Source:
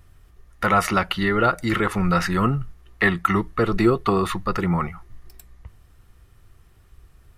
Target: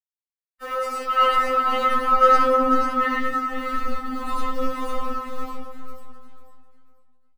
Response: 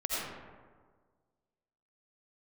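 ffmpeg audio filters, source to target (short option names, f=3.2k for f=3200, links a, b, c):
-filter_complex "[0:a]aeval=exprs='val(0)+0.5*0.0299*sgn(val(0))':c=same,adynamicequalizer=threshold=0.0158:dfrequency=2100:dqfactor=2.2:tfrequency=2100:tqfactor=2.2:attack=5:release=100:ratio=0.375:range=2.5:mode=cutabove:tftype=bell,aeval=exprs='val(0)*gte(abs(val(0)),0.0355)':c=same[a];[1:a]atrim=start_sample=2205[b];[a][b]afir=irnorm=-1:irlink=0,alimiter=limit=-7dB:level=0:latency=1:release=354,aecho=1:1:495|990|1485|1980:0.668|0.174|0.0452|0.0117,flanger=delay=20:depth=2.9:speed=0.97,asettb=1/sr,asplit=3[c][d][e];[c]atrim=end=1.174[f];[d]atrim=start=1.17:end=3.19,asetpts=PTS-STARTPTS,afade=t=in:d=0.004:c=qsin,afade=t=out:st=2.016:d=0.004:c=qsin,equalizer=f=1.1k:t=o:w=2.3:g=8[g];[e]atrim=start=3.186[h];[f][g]acrossfade=d=0.004:c1=hsin:c2=qsin[i];[i][h]acrossfade=d=0.004:c1=qsin:c2=hsin,afftfilt=real='re*3.46*eq(mod(b,12),0)':imag='im*3.46*eq(mod(b,12),0)':win_size=2048:overlap=0.75,volume=-4.5dB"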